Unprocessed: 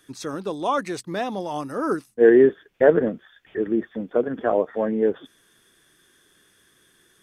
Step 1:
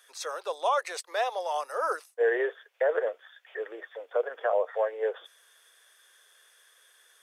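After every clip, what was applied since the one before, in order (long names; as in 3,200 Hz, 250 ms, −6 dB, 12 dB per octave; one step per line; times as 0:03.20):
Butterworth high-pass 490 Hz 48 dB per octave
brickwall limiter −17 dBFS, peak gain reduction 11 dB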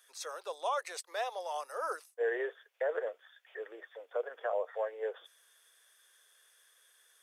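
high-shelf EQ 5,600 Hz +5.5 dB
level −7.5 dB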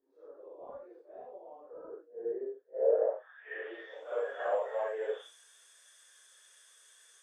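random phases in long frames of 200 ms
in parallel at −8.5 dB: soft clipping −29 dBFS, distortion −15 dB
on the sum: low-pass filter sweep 270 Hz → 7,700 Hz, 0:02.64–0:04.08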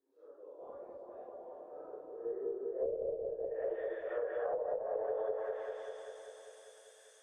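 harmonic generator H 4 −34 dB, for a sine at −16 dBFS
echo whose low-pass opens from repeat to repeat 197 ms, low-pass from 750 Hz, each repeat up 1 octave, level 0 dB
treble cut that deepens with the level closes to 330 Hz, closed at −24.5 dBFS
level −4 dB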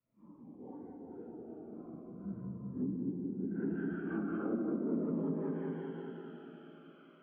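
single-sideband voice off tune −270 Hz 550–2,900 Hz
comb and all-pass reverb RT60 3.6 s, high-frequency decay 0.25×, pre-delay 60 ms, DRR 7 dB
phaser whose notches keep moving one way falling 0.4 Hz
level +4.5 dB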